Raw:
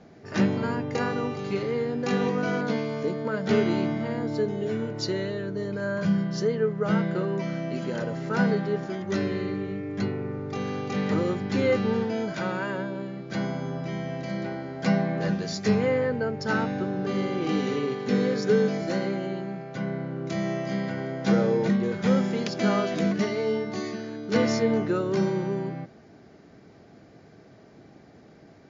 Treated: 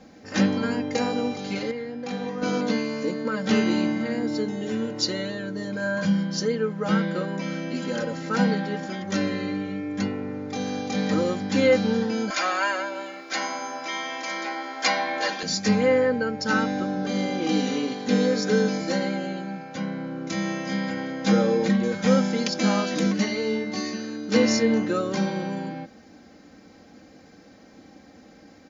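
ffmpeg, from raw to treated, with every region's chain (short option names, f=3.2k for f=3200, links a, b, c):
-filter_complex "[0:a]asettb=1/sr,asplit=3[a][b][c];[a]atrim=end=1.714[d];[b]atrim=start=1.71:end=2.42,asetpts=PTS-STARTPTS,afade=t=in:d=0.004:c=qsin,afade=t=out:st=0.706:d=0.004:c=qsin,lowpass=f=1.4k:p=1,equalizer=f=320:w=0.42:g=-9[e];[c]atrim=start=2.416[f];[d][e]acrossfade=d=0.004:c1=hsin:c2=qsin[g];[g][f]acrossfade=d=0.004:c1=qsin:c2=hsin,asettb=1/sr,asplit=3[h][i][j];[h]atrim=end=12.304[k];[i]atrim=start=12.3:end=15.43,asetpts=PTS-STARTPTS,afade=t=in:d=0.004:c=qsin,afade=t=out:st=3.126:d=0.004:c=qsin,highpass=680,aecho=1:1:2.9:0.53,atrim=end_sample=138033,acontrast=59[l];[j]atrim=start=15.426[m];[k][l]acrossfade=d=0.004:c1=hsin:c2=qsin[n];[n][m]acrossfade=d=0.004:c1=qsin:c2=hsin,highshelf=f=3.8k:g=9,aecho=1:1:3.8:0.73"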